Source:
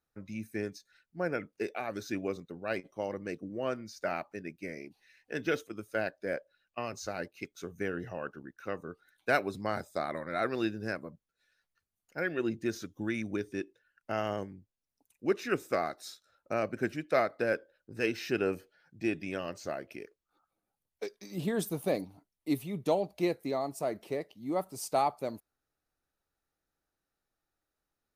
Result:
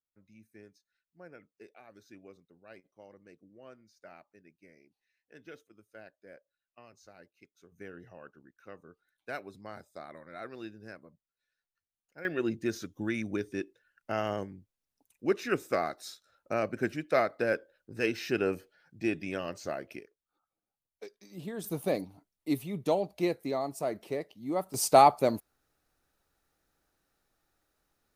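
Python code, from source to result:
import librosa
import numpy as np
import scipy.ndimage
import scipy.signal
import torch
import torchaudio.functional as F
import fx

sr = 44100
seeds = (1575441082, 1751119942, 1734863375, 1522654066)

y = fx.gain(x, sr, db=fx.steps((0.0, -18.0), (7.72, -11.5), (12.25, 1.0), (20.0, -7.5), (21.64, 0.5), (24.74, 9.5)))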